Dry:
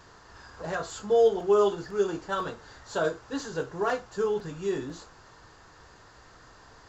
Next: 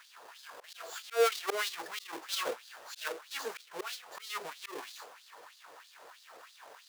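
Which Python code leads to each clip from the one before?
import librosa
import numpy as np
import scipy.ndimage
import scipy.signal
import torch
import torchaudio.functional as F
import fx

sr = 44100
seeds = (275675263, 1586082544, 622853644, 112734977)

y = fx.halfwave_hold(x, sr)
y = fx.auto_swell(y, sr, attack_ms=250.0)
y = fx.filter_lfo_highpass(y, sr, shape='sine', hz=3.1, low_hz=490.0, high_hz=4200.0, q=2.6)
y = y * librosa.db_to_amplitude(-6.0)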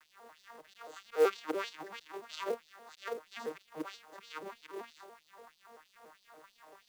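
y = fx.vocoder_arp(x, sr, chord='major triad', root=51, every_ms=96)
y = fx.quant_companded(y, sr, bits=6)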